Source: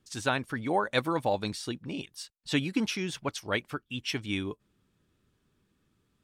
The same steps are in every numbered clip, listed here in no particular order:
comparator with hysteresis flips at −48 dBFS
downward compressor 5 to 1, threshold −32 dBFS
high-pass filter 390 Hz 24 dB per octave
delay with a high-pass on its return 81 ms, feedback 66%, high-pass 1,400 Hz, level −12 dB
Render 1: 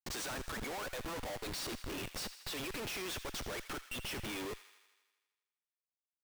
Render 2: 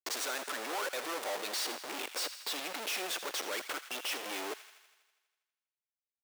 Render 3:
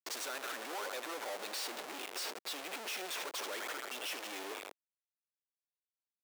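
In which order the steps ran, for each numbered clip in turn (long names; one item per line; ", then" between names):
high-pass filter, then downward compressor, then comparator with hysteresis, then delay with a high-pass on its return
comparator with hysteresis, then delay with a high-pass on its return, then downward compressor, then high-pass filter
delay with a high-pass on its return, then downward compressor, then comparator with hysteresis, then high-pass filter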